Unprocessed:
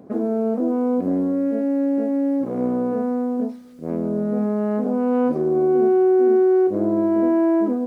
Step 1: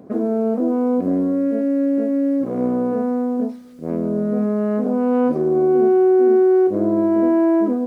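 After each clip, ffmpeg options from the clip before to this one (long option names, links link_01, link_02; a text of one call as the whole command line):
ffmpeg -i in.wav -af "bandreject=frequency=830:width=22,volume=2dB" out.wav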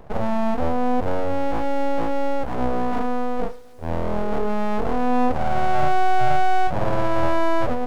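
ffmpeg -i in.wav -af "aeval=exprs='abs(val(0))':channel_layout=same" out.wav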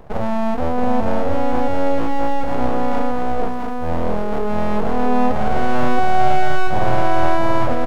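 ffmpeg -i in.wav -af "aecho=1:1:674:0.668,volume=2dB" out.wav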